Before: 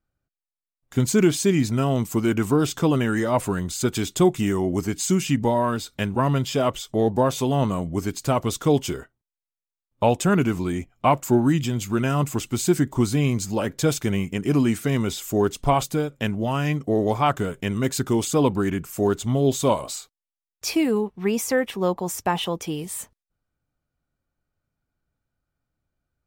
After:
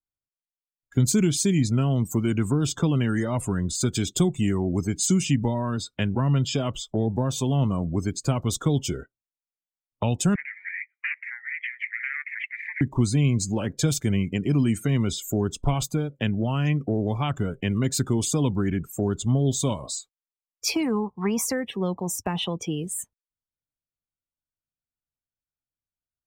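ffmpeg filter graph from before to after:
-filter_complex "[0:a]asettb=1/sr,asplit=3[s0][s1][s2];[s0]atrim=end=10.354[s3];[s1]atrim=start=10.35:end=12.81,asetpts=PTS-STARTPTS,afade=t=in:d=0.004:c=qsin,afade=t=out:st=2.456:d=0.004:c=qsin,acompressor=threshold=0.0562:ratio=4:attack=3.2:release=140:knee=1:detection=peak,aeval=exprs='0.299*sin(PI/2*6.31*val(0)/0.299)':c=same,asuperpass=centerf=2000:order=4:qfactor=4[s4];[s2]atrim=start=12.806[s5];[s3][s4]acrossfade=d=0.004:c1=hsin:c2=qsin[s6];[s6][s5]acrossfade=d=0.004:c1=qsin:c2=hsin,asettb=1/sr,asplit=3[s7][s8][s9];[s7]atrim=end=20.754[s10];[s8]atrim=start=20.75:end=21.45,asetpts=PTS-STARTPTS,afade=t=in:d=0.004:c=qsin,afade=t=out:st=0.696:d=0.004:c=qsin,equalizer=f=1000:t=o:w=1.1:g=13.5,bandreject=f=2700:w=9.2[s11];[s9]atrim=start=21.446[s12];[s10][s11]acrossfade=d=0.004:c1=hsin:c2=qsin[s13];[s13][s12]acrossfade=d=0.004:c1=qsin:c2=hsin,afftdn=nr=23:nf=-38,acrossover=split=220|3000[s14][s15][s16];[s15]acompressor=threshold=0.0282:ratio=6[s17];[s14][s17][s16]amix=inputs=3:normalize=0,volume=1.33"

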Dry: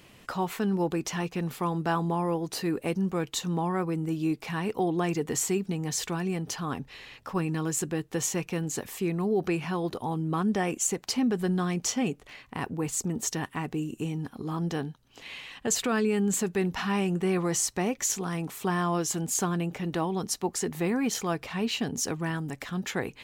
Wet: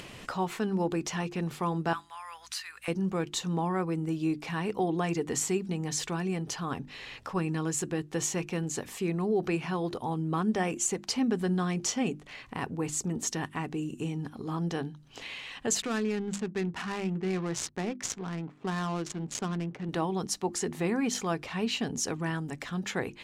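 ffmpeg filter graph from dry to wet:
-filter_complex "[0:a]asettb=1/sr,asplit=3[s0][s1][s2];[s0]atrim=end=1.934[s3];[s1]atrim=start=1.93:end=2.88,asetpts=PTS-STARTPTS,afade=t=in:d=0.004:c=qsin,afade=t=out:st=0.946:d=0.004:c=qsin,highpass=f=1300:w=0.5412,highpass=f=1300:w=1.3066,aeval=exprs='val(0)+0.000224*(sin(2*PI*60*n/s)+sin(2*PI*2*60*n/s)/2+sin(2*PI*3*60*n/s)/3+sin(2*PI*4*60*n/s)/4+sin(2*PI*5*60*n/s)/5)':c=same[s4];[s2]atrim=start=2.876[s5];[s3][s4]acrossfade=d=0.004:c1=hsin:c2=qsin[s6];[s6][s5]acrossfade=d=0.004:c1=qsin:c2=hsin,asettb=1/sr,asplit=3[s7][s8][s9];[s7]atrim=end=15.824[s10];[s8]atrim=start=15.82:end=19.89,asetpts=PTS-STARTPTS,afade=t=in:d=0.004:c=qsin,afade=t=out:st=4.066:d=0.004:c=qsin,highpass=120,adynamicsmooth=sensitivity=6:basefreq=550,equalizer=f=690:w=0.51:g=-5.5[s11];[s9]atrim=start=19.886[s12];[s10][s11]acrossfade=d=0.004:c1=hsin:c2=qsin[s13];[s13][s12]acrossfade=d=0.004:c1=qsin:c2=hsin,lowpass=10000,bandreject=f=50:t=h:w=6,bandreject=f=100:t=h:w=6,bandreject=f=150:t=h:w=6,bandreject=f=200:t=h:w=6,bandreject=f=250:t=h:w=6,bandreject=f=300:t=h:w=6,bandreject=f=350:t=h:w=6,acompressor=mode=upward:threshold=0.0178:ratio=2.5,volume=0.891"

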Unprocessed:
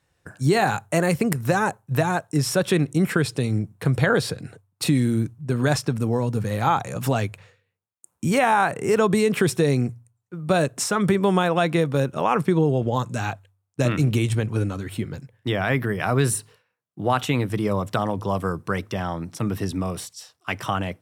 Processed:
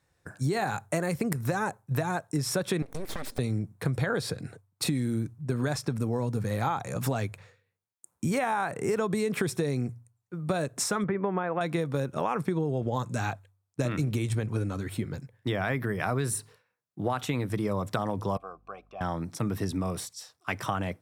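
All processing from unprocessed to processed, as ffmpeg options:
-filter_complex "[0:a]asettb=1/sr,asplit=3[s0][s1][s2];[s0]atrim=end=2.824[s3];[s1]atrim=start=2.82:end=3.39,asetpts=PTS-STARTPTS,afade=t=in:d=0.004:c=qsin,afade=t=out:st=0.566:d=0.004:c=qsin,lowshelf=f=77:g=-8.5,acompressor=threshold=0.0501:ratio=10:attack=3.2:release=140:knee=1:detection=peak,aeval=exprs='abs(val(0))':c=same[s4];[s2]atrim=start=3.386[s5];[s3][s4]acrossfade=d=0.004:c1=hsin:c2=qsin[s6];[s6][s5]acrossfade=d=0.004:c1=qsin:c2=hsin,asettb=1/sr,asplit=3[s7][s8][s9];[s7]atrim=end=11.044[s10];[s8]atrim=start=11.04:end=11.61,asetpts=PTS-STARTPTS,afade=t=in:d=0.004:c=qsin,afade=t=out:st=0.566:d=0.004:c=qsin,lowpass=f=2200:w=0.5412,lowpass=f=2200:w=1.3066,lowshelf=f=150:g=-10[s11];[s9]atrim=start=11.606[s12];[s10][s11]acrossfade=d=0.004:c1=hsin:c2=qsin[s13];[s13][s12]acrossfade=d=0.004:c1=qsin:c2=hsin,asettb=1/sr,asplit=3[s14][s15][s16];[s14]atrim=end=18.374[s17];[s15]atrim=start=18.37:end=19.01,asetpts=PTS-STARTPTS,afade=t=in:d=0.004:c=qsin,afade=t=out:st=0.636:d=0.004:c=qsin,asplit=3[s18][s19][s20];[s18]bandpass=f=730:t=q:w=8,volume=1[s21];[s19]bandpass=f=1090:t=q:w=8,volume=0.501[s22];[s20]bandpass=f=2440:t=q:w=8,volume=0.355[s23];[s21][s22][s23]amix=inputs=3:normalize=0,aeval=exprs='val(0)+0.001*(sin(2*PI*50*n/s)+sin(2*PI*2*50*n/s)/2+sin(2*PI*3*50*n/s)/3+sin(2*PI*4*50*n/s)/4+sin(2*PI*5*50*n/s)/5)':c=same[s24];[s16]atrim=start=19.006[s25];[s17][s24]acrossfade=d=0.004:c1=hsin:c2=qsin[s26];[s26][s25]acrossfade=d=0.004:c1=qsin:c2=hsin,equalizer=f=2900:t=o:w=0.25:g=-6.5,acompressor=threshold=0.0794:ratio=6,volume=0.75"

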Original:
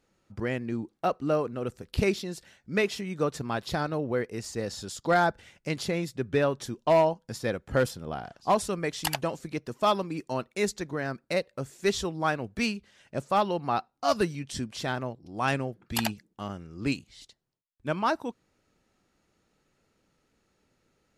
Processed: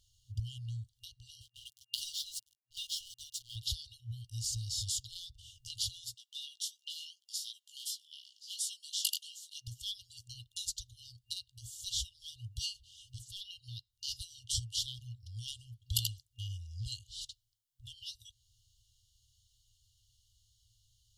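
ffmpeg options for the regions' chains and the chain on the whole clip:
-filter_complex "[0:a]asettb=1/sr,asplit=3[s0][s1][s2];[s0]atrim=end=1.414[s3];[s1]atrim=start=1.41:end=3.56,asetpts=PTS-STARTPTS,afade=t=in:d=0.004:c=qsin,afade=t=out:st=2.146:d=0.004:c=qsin,highpass=f=450:w=0.5412,highpass=f=450:w=1.3066,aecho=1:1:7.4:0.74,atrim=end_sample=94815,aeval=exprs='sgn(val(0))*max(abs(val(0))-0.00447,0)':c=same[s4];[s2]atrim=start=3.556[s5];[s3][s4]acrossfade=d=0.004:c1=hsin:c2=qsin[s6];[s6][s5]acrossfade=d=0.004:c1=qsin:c2=hsin,asettb=1/sr,asplit=3[s7][s8][s9];[s7]atrim=end=6.144[s10];[s8]atrim=start=6.14:end=9.68,asetpts=PTS-STARTPTS,afade=t=in:d=0.004:c=qsin,afade=t=out:st=3.536:d=0.004:c=qsin,highpass=f=1200:w=0.5412,highpass=f=1200:w=1.3066,flanger=delay=15:depth=6.3:speed=2.8[s11];[s9]atrim=start=9.676[s12];[s10][s11]acrossfade=d=0.004:c1=hsin:c2=qsin[s13];[s13][s12]acrossfade=d=0.004:c1=qsin:c2=hsin,acompressor=threshold=0.0126:ratio=2,afftfilt=real='re*(1-between(b*sr/4096,120,2800))':imag='im*(1-between(b*sr/4096,120,2800))':win_size=4096:overlap=0.75,volume=2.24"

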